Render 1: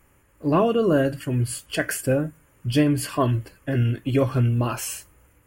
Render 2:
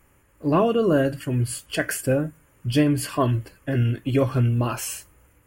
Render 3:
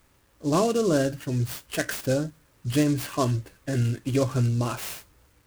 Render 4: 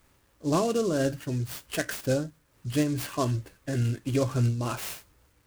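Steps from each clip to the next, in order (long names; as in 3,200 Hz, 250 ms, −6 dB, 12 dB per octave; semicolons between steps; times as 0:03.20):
no processing that can be heard
bit reduction 10 bits; short delay modulated by noise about 5,500 Hz, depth 0.043 ms; level −3 dB
amplitude modulation by smooth noise, depth 55%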